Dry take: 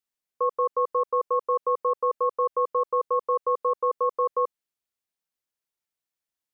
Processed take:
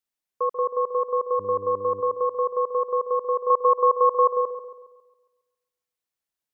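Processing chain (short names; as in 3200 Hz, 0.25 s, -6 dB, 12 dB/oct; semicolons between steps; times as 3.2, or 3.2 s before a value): 1.38–2 buzz 100 Hz, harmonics 5, -43 dBFS -3 dB/oct; 3.5–4.33 bell 860 Hz +12 dB 1 oct; dark delay 0.137 s, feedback 46%, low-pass 1100 Hz, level -9.5 dB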